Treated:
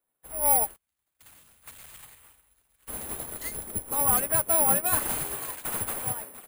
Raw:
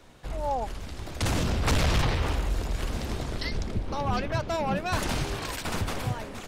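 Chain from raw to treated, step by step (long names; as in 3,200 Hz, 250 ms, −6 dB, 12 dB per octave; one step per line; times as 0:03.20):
0:00.76–0:02.88: guitar amp tone stack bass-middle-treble 5-5-5
mid-hump overdrive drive 18 dB, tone 1,600 Hz, clips at −17 dBFS
bad sample-rate conversion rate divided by 4×, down filtered, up zero stuff
expander for the loud parts 2.5 to 1, over −43 dBFS
level −1.5 dB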